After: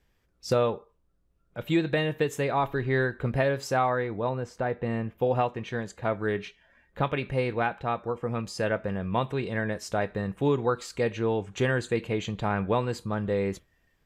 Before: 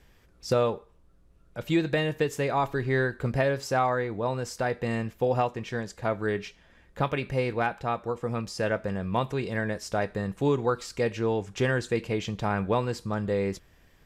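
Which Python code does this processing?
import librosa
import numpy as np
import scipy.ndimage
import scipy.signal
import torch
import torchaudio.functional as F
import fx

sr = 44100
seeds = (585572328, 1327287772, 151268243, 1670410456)

y = fx.noise_reduce_blind(x, sr, reduce_db=11)
y = fx.lowpass(y, sr, hz=1500.0, slope=6, at=(4.29, 5.18))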